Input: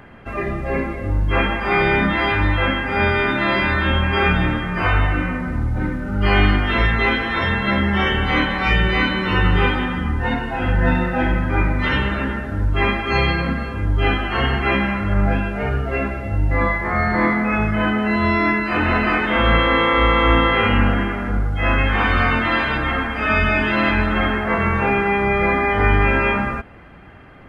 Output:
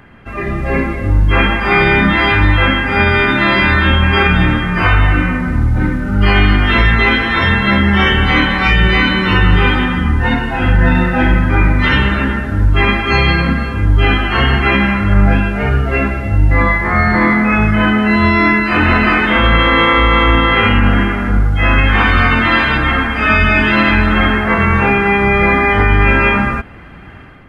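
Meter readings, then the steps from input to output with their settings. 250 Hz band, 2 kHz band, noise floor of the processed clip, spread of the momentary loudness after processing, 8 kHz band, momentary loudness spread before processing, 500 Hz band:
+6.5 dB, +7.0 dB, −21 dBFS, 5 LU, can't be measured, 7 LU, +4.0 dB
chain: parametric band 590 Hz −5 dB 1.4 octaves
brickwall limiter −9.5 dBFS, peak gain reduction 5 dB
automatic gain control gain up to 7.5 dB
level +2 dB

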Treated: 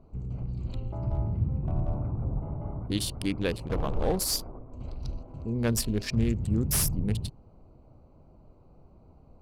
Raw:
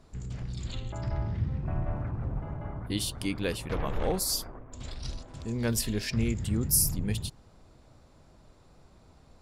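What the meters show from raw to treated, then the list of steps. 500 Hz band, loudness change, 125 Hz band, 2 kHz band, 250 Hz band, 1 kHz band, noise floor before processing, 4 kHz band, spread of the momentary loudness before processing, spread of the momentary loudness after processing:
+2.0 dB, +1.0 dB, +2.5 dB, −1.0 dB, +2.5 dB, +0.5 dB, −58 dBFS, 0.0 dB, 14 LU, 13 LU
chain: adaptive Wiener filter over 25 samples
slew-rate limiting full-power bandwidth 390 Hz
level +2.5 dB

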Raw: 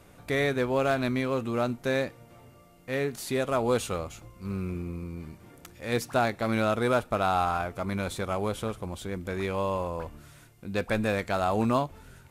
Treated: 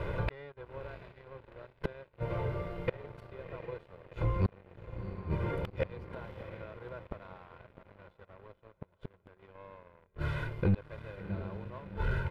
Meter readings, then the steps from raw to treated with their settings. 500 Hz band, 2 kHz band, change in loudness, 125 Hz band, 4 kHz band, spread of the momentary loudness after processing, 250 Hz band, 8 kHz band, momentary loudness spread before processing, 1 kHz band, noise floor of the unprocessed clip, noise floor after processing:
−12.5 dB, −11.5 dB, −9.0 dB, −2.0 dB, −16.5 dB, 21 LU, −11.0 dB, below −30 dB, 12 LU, −15.5 dB, −55 dBFS, −69 dBFS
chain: comb filter 2 ms, depth 88%
gate with flip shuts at −27 dBFS, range −38 dB
feedback delay with all-pass diffusion 711 ms, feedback 55%, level −12 dB
leveller curve on the samples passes 3
high-frequency loss of the air 420 metres
level +5.5 dB

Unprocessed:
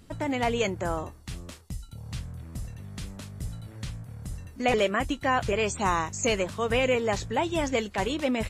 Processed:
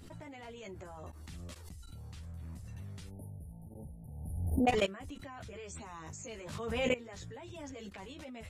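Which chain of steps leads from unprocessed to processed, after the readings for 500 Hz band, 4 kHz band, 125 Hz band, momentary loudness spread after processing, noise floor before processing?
−11.5 dB, −11.0 dB, −7.5 dB, 17 LU, −50 dBFS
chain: time-frequency box erased 0:03.09–0:04.67, 920–9,300 Hz
output level in coarse steps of 22 dB
multi-voice chorus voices 2, 0.39 Hz, delay 12 ms, depth 1.6 ms
background raised ahead of every attack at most 38 dB per second

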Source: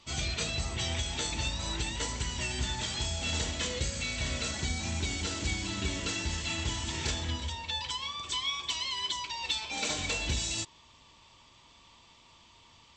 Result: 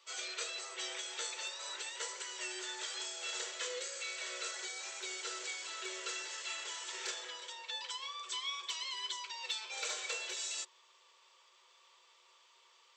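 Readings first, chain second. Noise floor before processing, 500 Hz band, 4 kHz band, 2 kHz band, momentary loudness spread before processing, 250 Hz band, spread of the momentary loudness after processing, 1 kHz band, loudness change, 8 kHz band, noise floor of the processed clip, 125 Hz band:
−59 dBFS, −7.0 dB, −7.0 dB, −6.0 dB, 3 LU, below −20 dB, 3 LU, −7.0 dB, −7.0 dB, −5.0 dB, −66 dBFS, below −40 dB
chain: Chebyshev high-pass with heavy ripple 360 Hz, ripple 9 dB
high-shelf EQ 5,000 Hz +9.5 dB
level −2.5 dB

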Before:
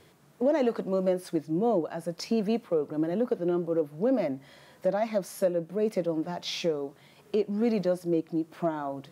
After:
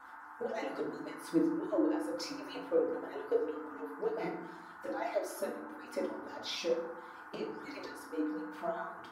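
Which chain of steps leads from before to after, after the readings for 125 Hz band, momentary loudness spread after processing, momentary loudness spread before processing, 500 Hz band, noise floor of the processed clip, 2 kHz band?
−17.5 dB, 12 LU, 6 LU, −8.5 dB, −51 dBFS, −0.5 dB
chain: harmonic-percussive split with one part muted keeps percussive
noise in a band 780–1,600 Hz −49 dBFS
feedback delay network reverb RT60 0.78 s, low-frequency decay 1.6×, high-frequency decay 0.55×, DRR −3.5 dB
level −7.5 dB

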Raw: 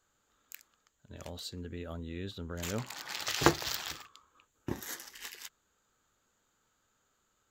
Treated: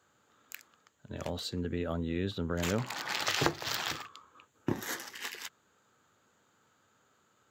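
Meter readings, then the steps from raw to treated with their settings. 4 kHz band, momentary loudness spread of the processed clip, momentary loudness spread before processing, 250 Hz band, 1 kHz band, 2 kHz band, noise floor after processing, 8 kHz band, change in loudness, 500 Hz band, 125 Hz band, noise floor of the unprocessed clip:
+2.0 dB, 16 LU, 23 LU, +3.0 dB, 0.0 dB, +3.0 dB, −71 dBFS, −0.5 dB, +1.5 dB, +2.5 dB, +3.5 dB, −76 dBFS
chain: high-pass filter 90 Hz 24 dB per octave
high-shelf EQ 4,000 Hz −9 dB
downward compressor 10 to 1, threshold −34 dBFS, peak gain reduction 16 dB
level +8.5 dB

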